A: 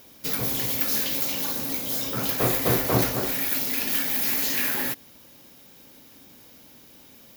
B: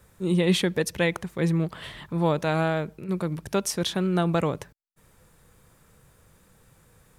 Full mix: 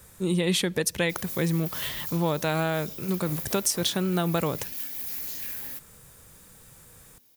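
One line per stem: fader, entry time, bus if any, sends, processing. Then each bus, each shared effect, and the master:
-19.0 dB, 0.85 s, no send, none
+2.5 dB, 0.00 s, no send, none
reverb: none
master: treble shelf 4 kHz +10.5 dB; compression 2.5:1, threshold -24 dBFS, peak gain reduction 7.5 dB

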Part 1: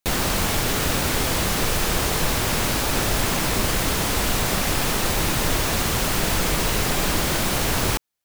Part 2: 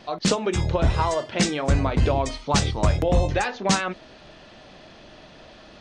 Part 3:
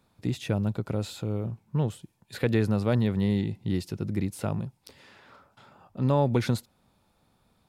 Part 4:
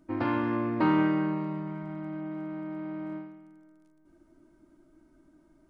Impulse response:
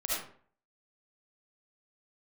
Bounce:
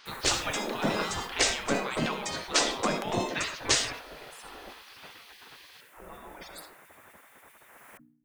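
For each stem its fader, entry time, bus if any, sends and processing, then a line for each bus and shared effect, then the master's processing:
-14.0 dB, 0.00 s, no bus, no send, FFT filter 1.9 kHz 0 dB, 4.4 kHz -23 dB, 10 kHz -7 dB; hum 60 Hz, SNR 17 dB; auto duck -11 dB, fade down 1.90 s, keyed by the third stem
-1.5 dB, 0.00 s, no bus, send -13.5 dB, bass shelf 170 Hz +4.5 dB
+2.0 dB, 0.00 s, bus A, send -15 dB, band-stop 4.1 kHz; compression, threshold -26 dBFS, peak gain reduction 8 dB; loudest bins only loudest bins 64
-6.0 dB, 0.05 s, bus A, no send, none
bus A: 0.0 dB, compressor with a negative ratio -35 dBFS, ratio -1; peak limiter -30.5 dBFS, peak gain reduction 10.5 dB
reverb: on, RT60 0.50 s, pre-delay 30 ms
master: spectral gate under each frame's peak -15 dB weak; decay stretcher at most 91 dB/s

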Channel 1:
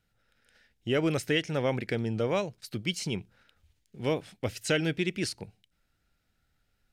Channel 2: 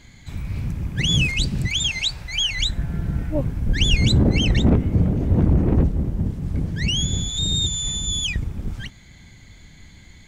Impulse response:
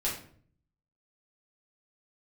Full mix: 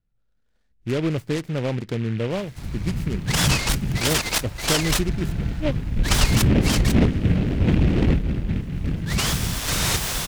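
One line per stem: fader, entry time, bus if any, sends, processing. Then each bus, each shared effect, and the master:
0.65 s -12 dB -> 0.86 s -2 dB, 0.00 s, no send, tilt EQ -3.5 dB/octave
0.0 dB, 2.30 s, no send, none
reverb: none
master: peaking EQ 80 Hz -3.5 dB; delay time shaken by noise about 2 kHz, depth 0.078 ms

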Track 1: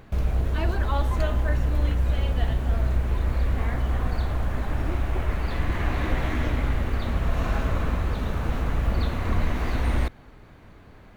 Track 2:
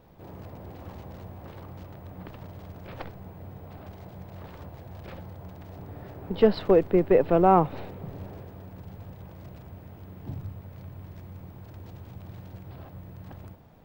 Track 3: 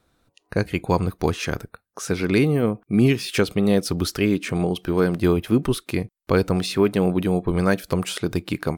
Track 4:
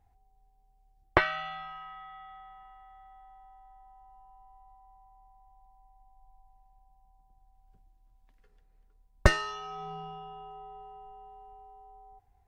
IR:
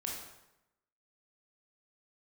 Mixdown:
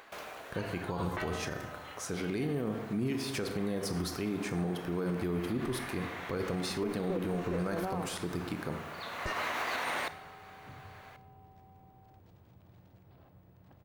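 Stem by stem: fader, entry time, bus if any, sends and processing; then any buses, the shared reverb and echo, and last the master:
+2.5 dB, 0.00 s, send -12.5 dB, high-pass 730 Hz 12 dB/octave; auto duck -22 dB, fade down 0.90 s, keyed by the third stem
-15.5 dB, 0.40 s, send -10.5 dB, none
-12.0 dB, 0.00 s, send -3 dB, peaking EQ 2.8 kHz -5 dB
-9.5 dB, 0.00 s, no send, none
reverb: on, RT60 0.90 s, pre-delay 17 ms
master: bass shelf 63 Hz -7 dB; peak limiter -25 dBFS, peak gain reduction 12 dB

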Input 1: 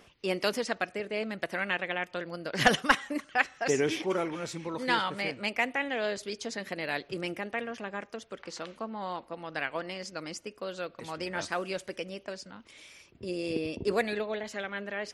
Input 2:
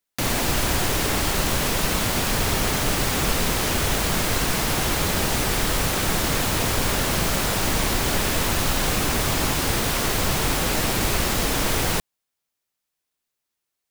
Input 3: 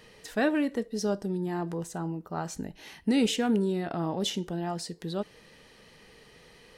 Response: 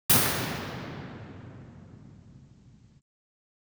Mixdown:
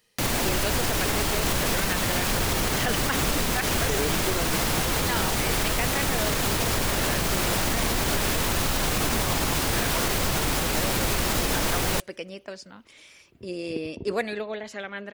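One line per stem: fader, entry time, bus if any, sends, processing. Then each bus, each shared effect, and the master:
+1.0 dB, 0.20 s, no send, none
-0.5 dB, 0.00 s, no send, none
-4.5 dB, 0.00 s, no send, pre-emphasis filter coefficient 0.8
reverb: none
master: peak limiter -14.5 dBFS, peak gain reduction 10 dB

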